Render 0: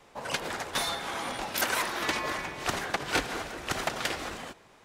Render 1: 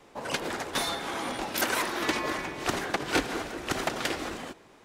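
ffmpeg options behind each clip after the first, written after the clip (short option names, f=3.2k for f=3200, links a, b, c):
-af "equalizer=f=310:t=o:w=1.1:g=6.5"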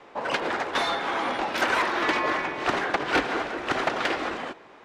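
-filter_complex "[0:a]aemphasis=mode=reproduction:type=50fm,asplit=2[a][b];[b]highpass=f=720:p=1,volume=15dB,asoftclip=type=tanh:threshold=-11dB[c];[a][c]amix=inputs=2:normalize=0,lowpass=f=2.7k:p=1,volume=-6dB"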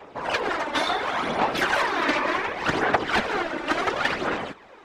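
-af "afftfilt=real='hypot(re,im)*cos(2*PI*random(0))':imag='hypot(re,im)*sin(2*PI*random(1))':win_size=512:overlap=0.75,aphaser=in_gain=1:out_gain=1:delay=3.4:decay=0.46:speed=0.69:type=sinusoidal,volume=6.5dB"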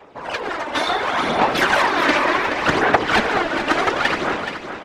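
-af "dynaudnorm=f=350:g=5:m=11.5dB,aecho=1:1:425|850|1275|1700:0.355|0.121|0.041|0.0139,volume=-1dB"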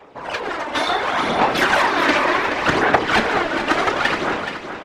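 -filter_complex "[0:a]asplit=2[a][b];[b]adelay=31,volume=-12dB[c];[a][c]amix=inputs=2:normalize=0"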